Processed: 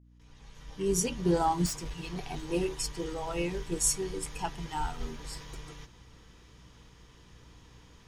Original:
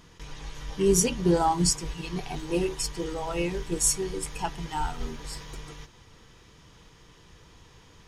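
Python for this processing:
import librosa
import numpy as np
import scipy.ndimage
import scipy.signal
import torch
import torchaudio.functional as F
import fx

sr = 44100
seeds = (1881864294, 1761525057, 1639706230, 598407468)

y = fx.fade_in_head(x, sr, length_s=1.4)
y = fx.overload_stage(y, sr, gain_db=29.0, at=(1.66, 2.19))
y = fx.add_hum(y, sr, base_hz=60, snr_db=24)
y = y * librosa.db_to_amplitude(-3.5)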